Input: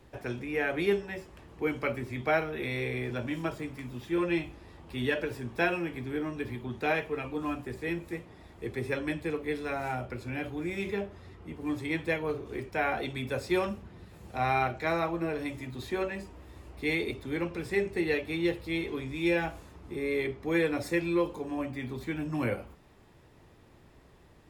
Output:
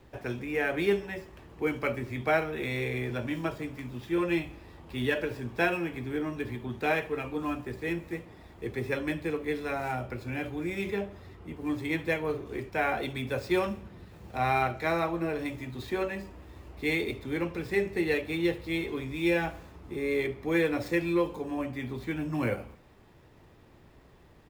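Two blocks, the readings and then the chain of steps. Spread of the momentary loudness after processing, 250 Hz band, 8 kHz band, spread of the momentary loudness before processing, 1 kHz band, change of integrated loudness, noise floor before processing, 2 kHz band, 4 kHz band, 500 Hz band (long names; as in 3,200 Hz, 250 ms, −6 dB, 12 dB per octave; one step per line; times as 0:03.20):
12 LU, +1.0 dB, +0.5 dB, 13 LU, +1.0 dB, +1.0 dB, −57 dBFS, +1.0 dB, +1.0 dB, +1.0 dB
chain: running median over 5 samples
high-shelf EQ 11,000 Hz +6.5 dB
repeating echo 71 ms, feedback 59%, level −22.5 dB
level +1 dB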